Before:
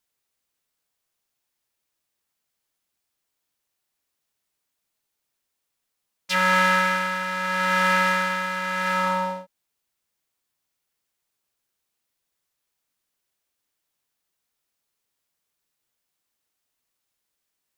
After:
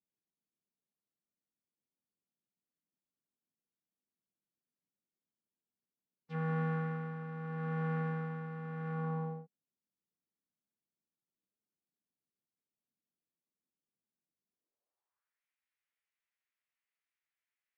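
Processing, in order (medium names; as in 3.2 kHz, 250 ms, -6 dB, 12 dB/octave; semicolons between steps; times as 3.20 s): band-pass sweep 230 Hz -> 2.1 kHz, 14.48–15.40 s; formant-preserving pitch shift -2.5 st; treble shelf 3.5 kHz -11 dB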